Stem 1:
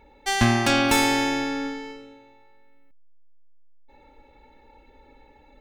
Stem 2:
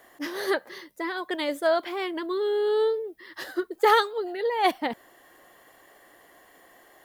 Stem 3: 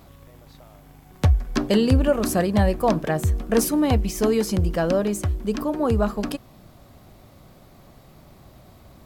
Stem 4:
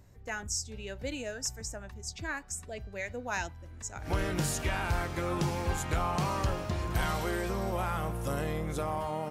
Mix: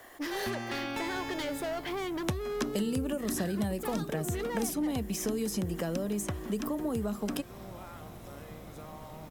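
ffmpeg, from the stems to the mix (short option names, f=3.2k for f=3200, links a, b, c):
-filter_complex "[0:a]acrossover=split=4700[a][b];[b]acompressor=threshold=-39dB:ratio=4:attack=1:release=60[c];[a][c]amix=inputs=2:normalize=0,adelay=50,volume=-13.5dB[d];[1:a]acompressor=threshold=-26dB:ratio=6,asoftclip=type=tanh:threshold=-32.5dB,volume=3dB,asplit=2[e][f];[2:a]bandreject=f=4.5k:w=7.1,acrossover=split=350|3000[g][h][i];[h]acompressor=threshold=-30dB:ratio=6[j];[g][j][i]amix=inputs=3:normalize=0,adelay=1050,volume=1.5dB[k];[3:a]volume=-14.5dB[l];[f]apad=whole_len=410356[m];[l][m]sidechaincompress=threshold=-54dB:ratio=8:attack=16:release=390[n];[d][e][k][n]amix=inputs=4:normalize=0,acrossover=split=130|7300[o][p][q];[o]acompressor=threshold=-49dB:ratio=4[r];[p]acompressor=threshold=-31dB:ratio=4[s];[q]acompressor=threshold=-40dB:ratio=4[t];[r][s][t]amix=inputs=3:normalize=0,aeval=exprs='val(0)*gte(abs(val(0)),0.00126)':c=same"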